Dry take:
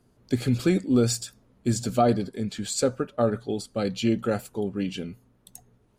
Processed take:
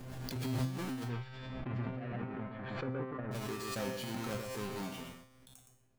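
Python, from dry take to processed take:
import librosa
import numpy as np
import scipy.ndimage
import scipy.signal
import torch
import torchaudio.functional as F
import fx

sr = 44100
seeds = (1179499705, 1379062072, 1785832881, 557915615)

y = fx.halfwave_hold(x, sr)
y = y + 10.0 ** (-7.0 / 20.0) * np.pad(y, (int(117 * sr / 1000.0), 0))[:len(y)]
y = fx.dynamic_eq(y, sr, hz=170.0, q=0.8, threshold_db=-26.0, ratio=4.0, max_db=4)
y = fx.lowpass(y, sr, hz=fx.line((1.04, 3000.0), (3.31, 1700.0)), slope=24, at=(1.04, 3.31), fade=0.02)
y = fx.over_compress(y, sr, threshold_db=-19.0, ratio=-0.5)
y = fx.comb_fb(y, sr, f0_hz=130.0, decay_s=0.57, harmonics='all', damping=0.0, mix_pct=90)
y = fx.pre_swell(y, sr, db_per_s=27.0)
y = y * librosa.db_to_amplitude(-6.0)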